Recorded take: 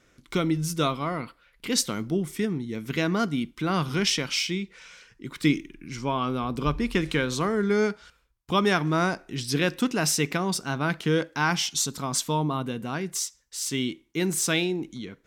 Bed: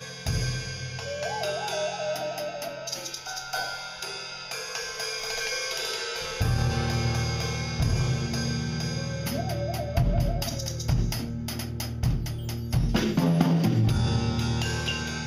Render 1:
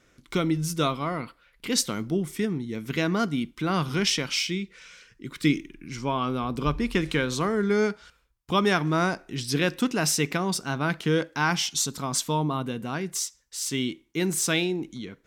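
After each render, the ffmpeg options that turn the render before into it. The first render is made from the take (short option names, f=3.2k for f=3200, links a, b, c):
-filter_complex "[0:a]asettb=1/sr,asplit=3[a][b][c];[a]atrim=end=4.444[d];[b]atrim=start=4.44:end=5.56,asetpts=PTS-STARTPTS,afade=t=in:d=0.004:c=qsin,afade=t=out:st=1.116:d=0.004:c=qsin,equalizer=f=810:t=o:w=0.61:g=-8[e];[c]atrim=start=5.556[f];[d][e]acrossfade=d=0.004:c1=hsin:c2=qsin[g];[g][f]acrossfade=d=0.004:c1=qsin:c2=hsin"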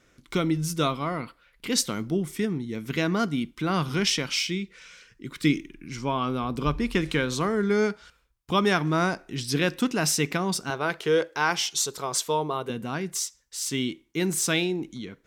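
-filter_complex "[0:a]asettb=1/sr,asplit=3[a][b][c];[a]atrim=end=10.704[d];[b]atrim=start=10.7:end=12.7,asetpts=PTS-STARTPTS,afade=t=in:d=0.004:c=qsin,afade=t=out:st=1.996:d=0.004:c=qsin,lowshelf=f=320:t=q:w=3:g=-7[e];[c]atrim=start=12.696[f];[d][e]acrossfade=d=0.004:c1=hsin:c2=qsin[g];[g][f]acrossfade=d=0.004:c1=qsin:c2=hsin"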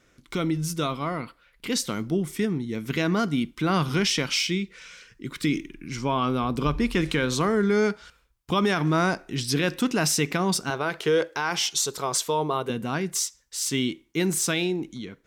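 -af "alimiter=limit=-17dB:level=0:latency=1:release=42,dynaudnorm=f=950:g=5:m=3dB"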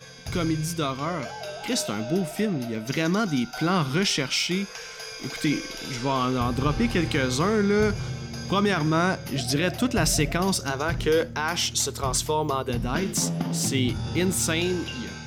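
-filter_complex "[1:a]volume=-6dB[a];[0:a][a]amix=inputs=2:normalize=0"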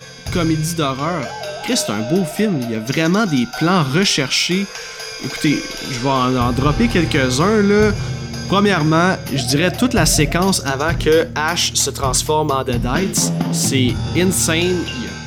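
-af "volume=8.5dB"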